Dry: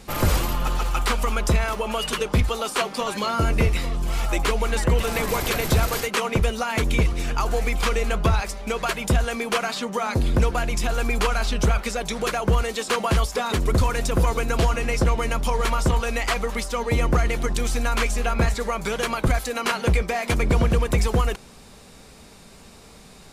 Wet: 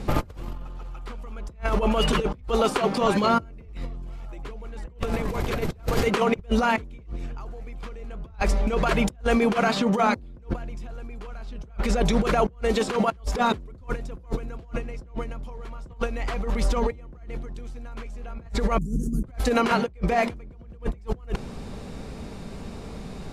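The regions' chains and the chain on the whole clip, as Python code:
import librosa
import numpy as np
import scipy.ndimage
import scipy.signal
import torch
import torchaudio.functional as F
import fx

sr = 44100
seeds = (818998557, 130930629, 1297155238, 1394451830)

y = fx.chain(x, sr, fx.cheby2_bandstop(low_hz=540.0, high_hz=4000.0, order=4, stop_db=40),
    fx.over_compress(threshold_db=-36.0, ratio=-0.5), at=(18.78, 19.24))
y = fx.tilt_shelf(y, sr, db=5.0, hz=660.0)
y = fx.over_compress(y, sr, threshold_db=-26.0, ratio=-0.5)
y = fx.high_shelf(y, sr, hz=6800.0, db=-12.0)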